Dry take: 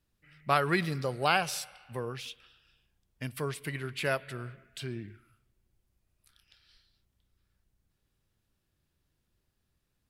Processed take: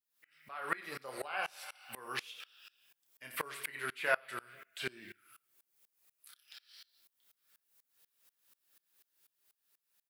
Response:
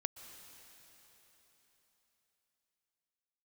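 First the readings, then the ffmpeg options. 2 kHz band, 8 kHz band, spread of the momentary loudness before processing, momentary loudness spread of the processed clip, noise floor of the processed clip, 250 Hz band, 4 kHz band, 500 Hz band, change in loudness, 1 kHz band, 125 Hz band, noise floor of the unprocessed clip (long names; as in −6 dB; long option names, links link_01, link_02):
−3.0 dB, −7.0 dB, 16 LU, 23 LU, below −85 dBFS, −16.0 dB, −7.5 dB, −9.0 dB, −7.0 dB, −9.0 dB, −22.5 dB, −79 dBFS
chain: -filter_complex "[0:a]aemphasis=mode=production:type=bsi,acrossover=split=2600[link_01][link_02];[link_02]acompressor=threshold=-48dB:ratio=4:attack=1:release=60[link_03];[link_01][link_03]amix=inputs=2:normalize=0,highpass=frequency=1200:poles=1,highshelf=frequency=3900:gain=-6,dynaudnorm=framelen=160:gausssize=13:maxgain=6dB,alimiter=limit=-23dB:level=0:latency=1:release=490,flanger=delay=5.4:depth=4.4:regen=-43:speed=1.7:shape=triangular,asplit=2[link_04][link_05];[link_05]adelay=31,volume=-10dB[link_06];[link_04][link_06]amix=inputs=2:normalize=0,asplit=2[link_07][link_08];[link_08]aecho=0:1:88:0.178[link_09];[link_07][link_09]amix=inputs=2:normalize=0,aeval=exprs='val(0)*pow(10,-26*if(lt(mod(-4.1*n/s,1),2*abs(-4.1)/1000),1-mod(-4.1*n/s,1)/(2*abs(-4.1)/1000),(mod(-4.1*n/s,1)-2*abs(-4.1)/1000)/(1-2*abs(-4.1)/1000))/20)':channel_layout=same,volume=12dB"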